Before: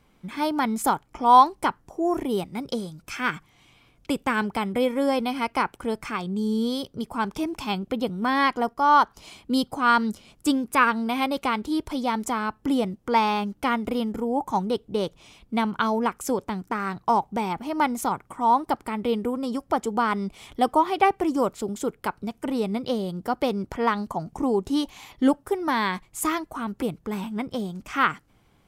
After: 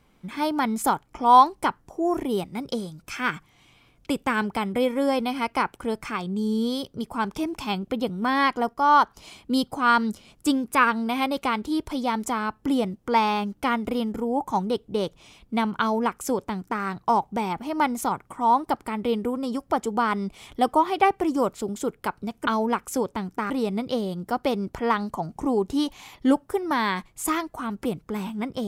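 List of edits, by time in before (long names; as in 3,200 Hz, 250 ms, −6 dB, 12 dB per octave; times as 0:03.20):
0:15.80–0:16.83: duplicate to 0:22.47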